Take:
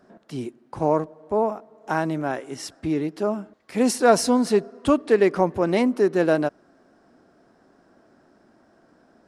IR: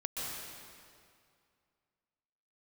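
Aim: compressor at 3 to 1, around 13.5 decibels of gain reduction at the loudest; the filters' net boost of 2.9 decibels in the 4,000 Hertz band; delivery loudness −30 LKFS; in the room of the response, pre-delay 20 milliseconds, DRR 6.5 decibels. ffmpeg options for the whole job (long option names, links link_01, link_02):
-filter_complex "[0:a]equalizer=frequency=4000:width_type=o:gain=4,acompressor=threshold=-31dB:ratio=3,asplit=2[link_01][link_02];[1:a]atrim=start_sample=2205,adelay=20[link_03];[link_02][link_03]afir=irnorm=-1:irlink=0,volume=-10dB[link_04];[link_01][link_04]amix=inputs=2:normalize=0,volume=2.5dB"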